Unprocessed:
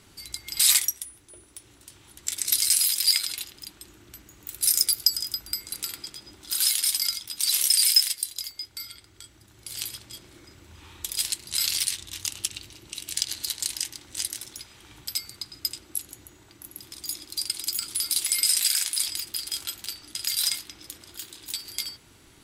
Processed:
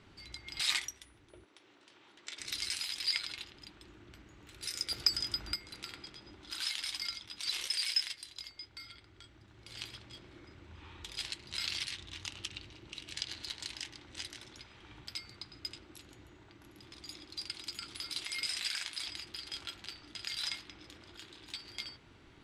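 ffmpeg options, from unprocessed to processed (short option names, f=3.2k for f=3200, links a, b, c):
-filter_complex "[0:a]asettb=1/sr,asplit=3[a][b][c];[a]atrim=end=1.454[d];[b]atrim=start=1.45:end=2.4,asetpts=PTS-STARTPTS,afade=t=in:d=0.004:c=qsin,afade=t=out:st=0.946:d=0.004:c=qsin,highpass=320,lowpass=7.7k[e];[c]atrim=start=2.396[f];[d][e]acrossfade=d=0.004:c1=hsin:c2=qsin[g];[g][f]acrossfade=d=0.004:c1=qsin:c2=hsin,asettb=1/sr,asplit=3[h][i][j];[h]atrim=end=4.914[k];[i]atrim=start=4.91:end=5.56,asetpts=PTS-STARTPTS,afade=t=in:d=0.004:c=qsin,afade=t=out:st=0.646:d=0.004:c=qsin,acontrast=82[l];[j]atrim=start=5.556[m];[k][l]acrossfade=d=0.004:c1=hsin:c2=qsin[n];[n][m]acrossfade=d=0.004:c1=qsin:c2=hsin,lowpass=3.2k,volume=-3dB"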